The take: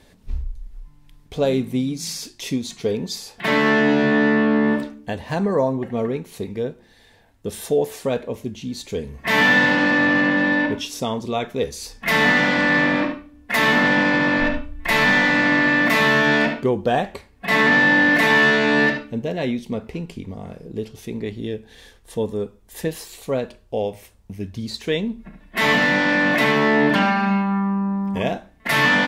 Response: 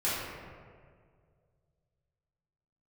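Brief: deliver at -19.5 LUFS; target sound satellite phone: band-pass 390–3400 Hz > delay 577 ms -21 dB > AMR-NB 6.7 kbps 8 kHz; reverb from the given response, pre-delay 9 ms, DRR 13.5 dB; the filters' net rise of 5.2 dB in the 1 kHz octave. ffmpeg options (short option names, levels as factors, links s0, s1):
-filter_complex "[0:a]equalizer=f=1000:t=o:g=6.5,asplit=2[s0][s1];[1:a]atrim=start_sample=2205,adelay=9[s2];[s1][s2]afir=irnorm=-1:irlink=0,volume=0.0708[s3];[s0][s3]amix=inputs=2:normalize=0,highpass=390,lowpass=3400,aecho=1:1:577:0.0891,volume=0.891" -ar 8000 -c:a libopencore_amrnb -b:a 6700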